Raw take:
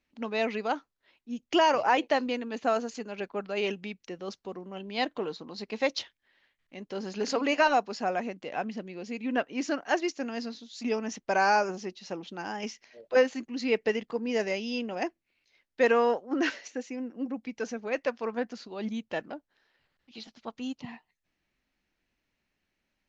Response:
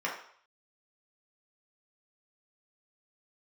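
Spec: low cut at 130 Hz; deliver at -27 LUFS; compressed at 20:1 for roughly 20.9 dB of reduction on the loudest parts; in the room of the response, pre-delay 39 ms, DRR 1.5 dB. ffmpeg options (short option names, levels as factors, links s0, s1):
-filter_complex "[0:a]highpass=130,acompressor=threshold=0.0112:ratio=20,asplit=2[s0][s1];[1:a]atrim=start_sample=2205,adelay=39[s2];[s1][s2]afir=irnorm=-1:irlink=0,volume=0.355[s3];[s0][s3]amix=inputs=2:normalize=0,volume=6.31"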